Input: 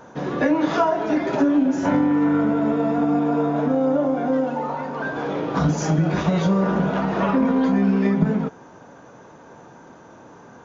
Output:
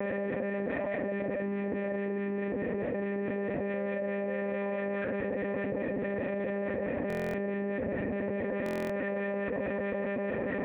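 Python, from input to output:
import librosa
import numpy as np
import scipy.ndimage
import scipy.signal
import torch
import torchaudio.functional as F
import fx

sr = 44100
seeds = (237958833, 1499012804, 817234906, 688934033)

y = np.sign(x) * np.sqrt(np.mean(np.square(x)))
y = fx.harmonic_tremolo(y, sr, hz=4.7, depth_pct=50, crossover_hz=1500.0)
y = fx.formant_cascade(y, sr, vowel='e')
y = fx.high_shelf(y, sr, hz=2100.0, db=-7.0)
y = y + 10.0 ** (-23.5 / 20.0) * np.pad(y, (int(403 * sr / 1000.0), 0))[:len(y)]
y = fx.lpc_monotone(y, sr, seeds[0], pitch_hz=200.0, order=10)
y = scipy.signal.sosfilt(scipy.signal.butter(2, 97.0, 'highpass', fs=sr, output='sos'), y)
y = fx.peak_eq(y, sr, hz=260.0, db=12.5, octaves=0.57)
y = fx.buffer_glitch(y, sr, at_s=(7.08, 8.64), block=1024, repeats=10)
y = fx.env_flatten(y, sr, amount_pct=100)
y = y * 10.0 ** (-3.5 / 20.0)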